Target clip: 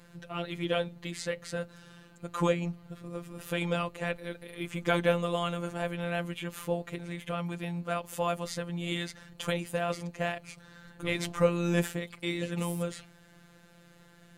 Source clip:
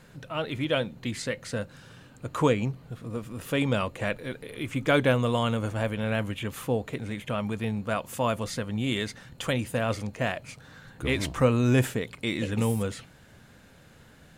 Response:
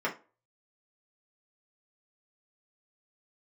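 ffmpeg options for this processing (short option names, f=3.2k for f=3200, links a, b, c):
-af "afftfilt=real='hypot(re,im)*cos(PI*b)':imag='0':win_size=1024:overlap=0.75"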